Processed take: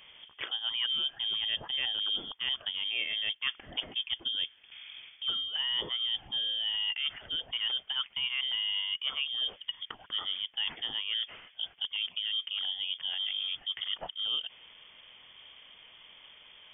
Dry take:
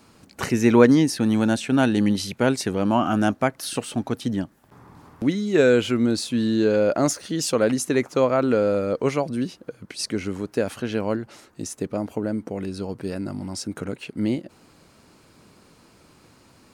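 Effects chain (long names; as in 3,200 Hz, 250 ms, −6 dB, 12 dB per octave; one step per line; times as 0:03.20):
reversed playback
downward compressor 8 to 1, threshold −30 dBFS, peak gain reduction 20.5 dB
reversed playback
voice inversion scrambler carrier 3,400 Hz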